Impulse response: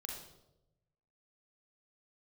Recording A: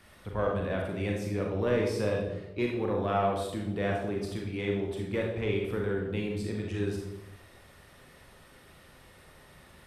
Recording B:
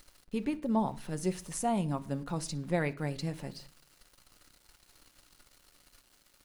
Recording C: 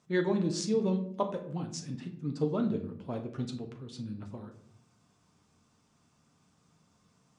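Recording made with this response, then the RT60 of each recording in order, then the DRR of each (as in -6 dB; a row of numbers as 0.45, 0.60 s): A; 0.90, 0.45, 0.65 s; -0.5, 9.5, 3.0 dB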